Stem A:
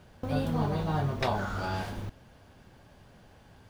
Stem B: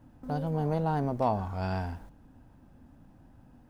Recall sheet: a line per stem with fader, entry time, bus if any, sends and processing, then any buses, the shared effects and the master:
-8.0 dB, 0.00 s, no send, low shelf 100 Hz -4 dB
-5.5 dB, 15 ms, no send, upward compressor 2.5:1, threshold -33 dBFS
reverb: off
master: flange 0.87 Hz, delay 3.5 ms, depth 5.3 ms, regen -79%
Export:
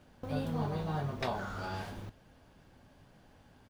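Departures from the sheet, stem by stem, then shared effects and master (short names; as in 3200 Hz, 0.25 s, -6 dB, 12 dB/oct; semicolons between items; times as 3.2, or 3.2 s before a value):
stem A -8.0 dB -> -1.0 dB; stem B -5.5 dB -> -16.0 dB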